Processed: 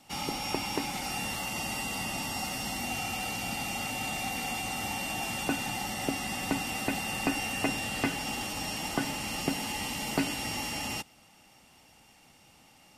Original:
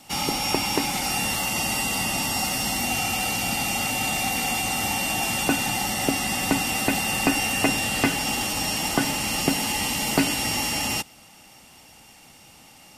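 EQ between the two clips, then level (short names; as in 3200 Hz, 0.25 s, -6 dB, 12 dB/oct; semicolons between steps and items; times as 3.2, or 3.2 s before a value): high shelf 5300 Hz -5 dB; -7.5 dB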